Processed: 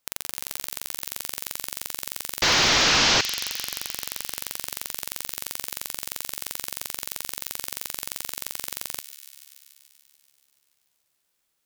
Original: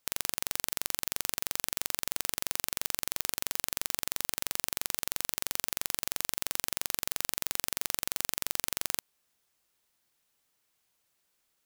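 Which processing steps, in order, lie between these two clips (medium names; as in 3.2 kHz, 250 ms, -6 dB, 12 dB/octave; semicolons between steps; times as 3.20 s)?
2.42–3.21 s: one-bit delta coder 32 kbps, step -12 dBFS; feedback echo behind a high-pass 144 ms, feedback 75%, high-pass 2.5 kHz, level -11 dB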